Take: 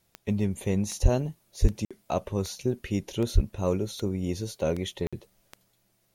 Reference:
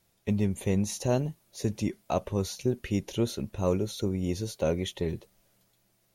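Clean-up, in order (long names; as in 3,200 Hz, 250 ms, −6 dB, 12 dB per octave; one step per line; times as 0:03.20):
click removal
high-pass at the plosives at 0:01.02/0:01.61/0:03.34
repair the gap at 0:01.85/0:05.07, 56 ms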